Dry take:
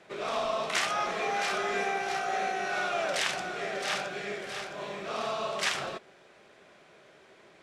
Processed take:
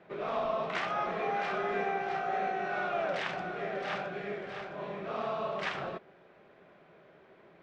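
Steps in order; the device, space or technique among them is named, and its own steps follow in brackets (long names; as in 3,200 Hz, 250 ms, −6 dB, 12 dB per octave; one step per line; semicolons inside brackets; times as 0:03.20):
phone in a pocket (low-pass filter 3,600 Hz 12 dB per octave; parametric band 170 Hz +5.5 dB 0.25 octaves; high-shelf EQ 2,300 Hz −11.5 dB)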